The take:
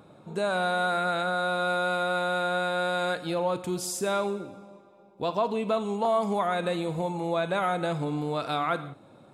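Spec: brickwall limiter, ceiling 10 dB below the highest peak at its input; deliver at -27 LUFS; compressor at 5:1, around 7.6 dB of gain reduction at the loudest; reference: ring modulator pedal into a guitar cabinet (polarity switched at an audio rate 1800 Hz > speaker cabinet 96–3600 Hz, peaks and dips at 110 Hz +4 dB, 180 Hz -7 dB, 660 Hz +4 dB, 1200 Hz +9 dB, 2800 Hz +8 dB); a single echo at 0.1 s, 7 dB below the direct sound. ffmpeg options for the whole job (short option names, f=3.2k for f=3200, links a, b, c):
-af "acompressor=threshold=-30dB:ratio=5,alimiter=level_in=7dB:limit=-24dB:level=0:latency=1,volume=-7dB,aecho=1:1:100:0.447,aeval=exprs='val(0)*sgn(sin(2*PI*1800*n/s))':c=same,highpass=96,equalizer=f=110:t=q:w=4:g=4,equalizer=f=180:t=q:w=4:g=-7,equalizer=f=660:t=q:w=4:g=4,equalizer=f=1.2k:t=q:w=4:g=9,equalizer=f=2.8k:t=q:w=4:g=8,lowpass=f=3.6k:w=0.5412,lowpass=f=3.6k:w=1.3066,volume=6dB"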